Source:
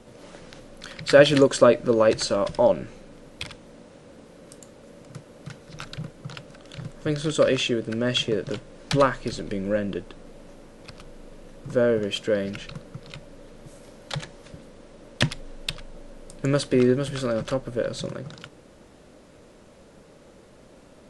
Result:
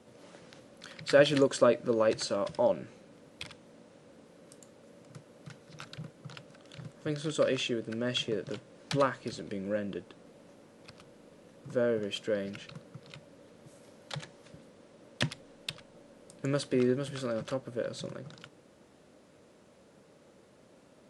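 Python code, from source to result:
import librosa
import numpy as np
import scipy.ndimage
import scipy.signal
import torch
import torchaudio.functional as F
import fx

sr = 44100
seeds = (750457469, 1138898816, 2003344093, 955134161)

y = scipy.signal.sosfilt(scipy.signal.butter(2, 100.0, 'highpass', fs=sr, output='sos'), x)
y = y * 10.0 ** (-8.0 / 20.0)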